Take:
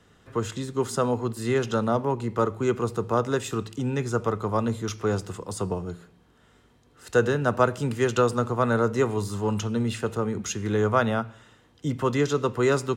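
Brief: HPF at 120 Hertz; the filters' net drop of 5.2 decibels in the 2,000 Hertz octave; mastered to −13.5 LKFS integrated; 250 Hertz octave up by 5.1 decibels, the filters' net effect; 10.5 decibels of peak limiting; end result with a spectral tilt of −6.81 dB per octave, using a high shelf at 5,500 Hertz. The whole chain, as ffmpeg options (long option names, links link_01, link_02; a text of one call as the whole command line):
ffmpeg -i in.wav -af "highpass=120,equalizer=frequency=250:width_type=o:gain=6.5,equalizer=frequency=2000:width_type=o:gain=-7.5,highshelf=frequency=5500:gain=-4.5,volume=14.5dB,alimiter=limit=-3.5dB:level=0:latency=1" out.wav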